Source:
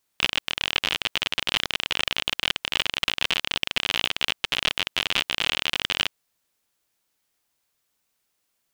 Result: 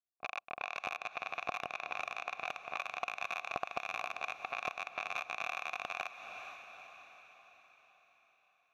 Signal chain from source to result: self-modulated delay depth 0.64 ms; gate -33 dBFS, range -25 dB; level-controlled noise filter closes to 580 Hz, open at -25 dBFS; level rider; saturation -8 dBFS, distortion -13 dB; vowel filter a; tone controls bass +12 dB, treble -14 dB; on a send: echo that smears into a reverb 453 ms, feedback 52%, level -14 dB; on the sum: compression 2:1, threshold -52 dBFS, peak gain reduction 9 dB; band-stop 3.2 kHz, Q 6.6; trim +13.5 dB

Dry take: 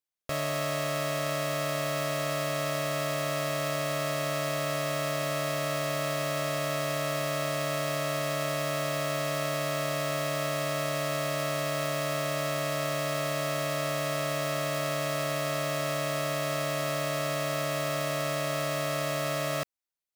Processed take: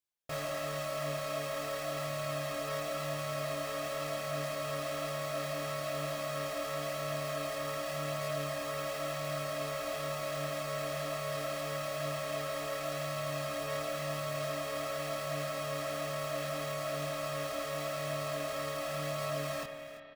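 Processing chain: reverb removal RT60 0.91 s; saturation -32 dBFS, distortion -13 dB; on a send: delay 340 ms -14.5 dB; on the sum: chorus voices 2, 0.91 Hz, delay 22 ms, depth 3.2 ms; spring tank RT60 3.1 s, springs 32/45 ms, chirp 50 ms, DRR 6 dB; trim +2 dB

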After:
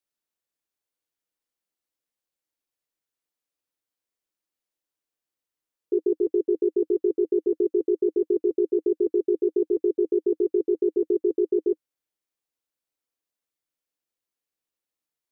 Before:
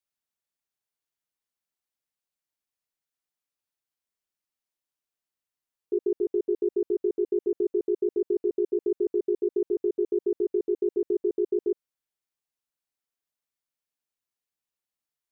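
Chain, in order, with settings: graphic EQ with 31 bands 125 Hz -4 dB, 315 Hz +7 dB, 500 Hz +6 dB

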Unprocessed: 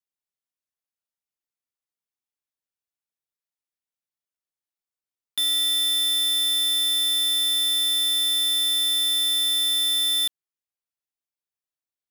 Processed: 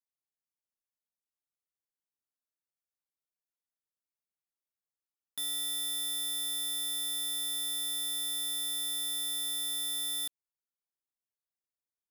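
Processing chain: peaking EQ 2.9 kHz -10.5 dB 1.2 oct; trim -6.5 dB

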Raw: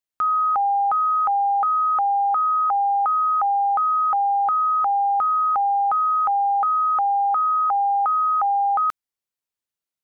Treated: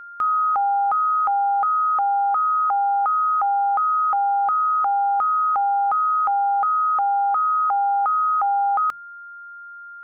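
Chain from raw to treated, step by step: whistle 1.4 kHz -36 dBFS; hum notches 50/100/150/200 Hz

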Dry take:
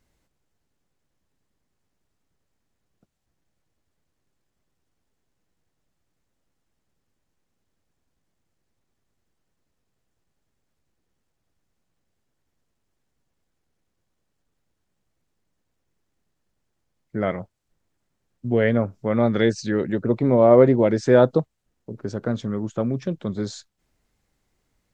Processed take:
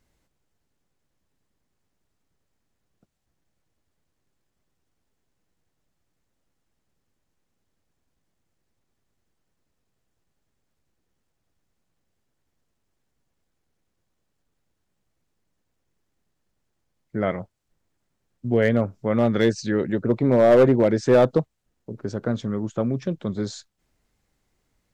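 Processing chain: hard clipper -9.5 dBFS, distortion -15 dB

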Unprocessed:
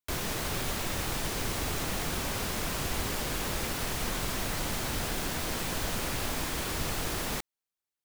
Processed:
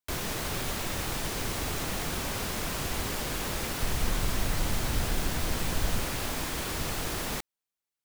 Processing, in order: 3.81–6.04 s: bass shelf 110 Hz +9.5 dB

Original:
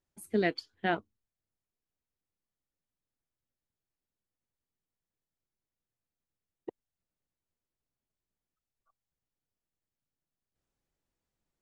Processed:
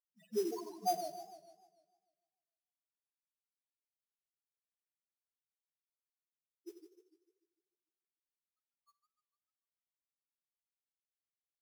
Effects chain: feedback delay 86 ms, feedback 39%, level -10 dB; loudest bins only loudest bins 1; in parallel at +0.5 dB: compression, threshold -45 dBFS, peak gain reduction 13 dB; on the sum: high-pass 470 Hz 12 dB/octave; treble shelf 7.3 kHz -7.5 dB; on a send at -17 dB: reverberation RT60 0.55 s, pre-delay 42 ms; on the sum: careless resampling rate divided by 8×, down none, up hold; modulation noise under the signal 20 dB; modulated delay 149 ms, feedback 49%, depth 175 cents, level -11 dB; trim +4.5 dB

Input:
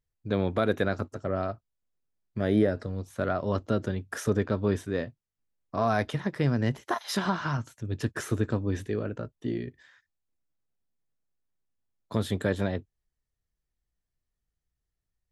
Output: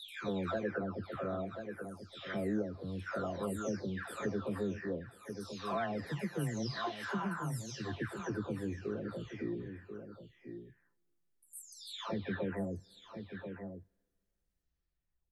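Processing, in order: delay that grows with frequency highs early, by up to 689 ms; delay 1036 ms -14 dB; vibrato 7.6 Hz 13 cents; two-slope reverb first 0.28 s, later 2.4 s, from -22 dB, DRR 20 dB; compression 2:1, threshold -39 dBFS, peak gain reduction 11 dB

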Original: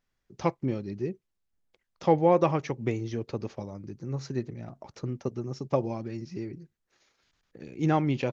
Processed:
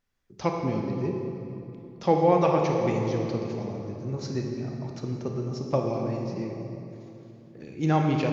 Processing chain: dynamic bell 4.6 kHz, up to +5 dB, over -56 dBFS, Q 1.9; on a send: reverberation RT60 3.0 s, pre-delay 25 ms, DRR 1 dB

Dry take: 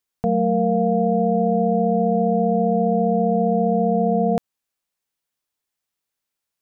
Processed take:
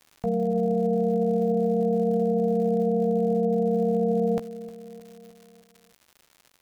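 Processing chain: peak limiter -17 dBFS, peak gain reduction 7 dB; doubling 15 ms -7 dB; feedback delay 309 ms, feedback 58%, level -18 dB; crackle 170 per s -39 dBFS; trim -1 dB

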